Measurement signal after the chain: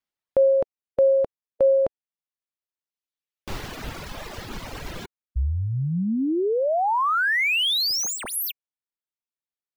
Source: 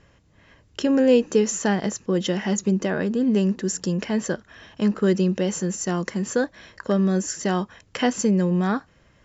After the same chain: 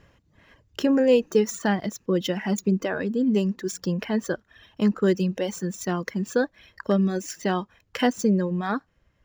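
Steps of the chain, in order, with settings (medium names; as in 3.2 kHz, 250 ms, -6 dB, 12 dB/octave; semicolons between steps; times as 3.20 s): median filter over 5 samples; reverb removal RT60 2 s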